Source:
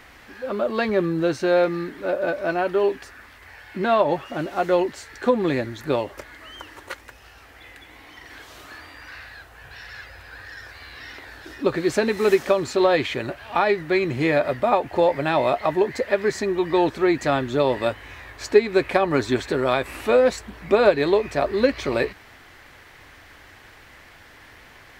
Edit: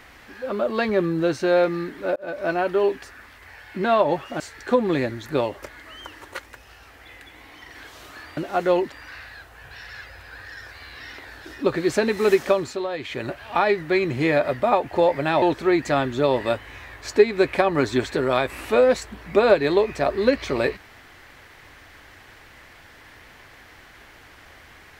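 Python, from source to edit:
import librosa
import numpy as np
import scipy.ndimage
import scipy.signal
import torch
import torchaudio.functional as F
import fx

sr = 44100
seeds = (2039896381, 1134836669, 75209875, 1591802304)

y = fx.edit(x, sr, fx.fade_in_span(start_s=2.16, length_s=0.29),
    fx.move(start_s=4.4, length_s=0.55, to_s=8.92),
    fx.fade_down_up(start_s=12.54, length_s=0.74, db=-10.5, fade_s=0.29),
    fx.cut(start_s=15.42, length_s=1.36), tone=tone)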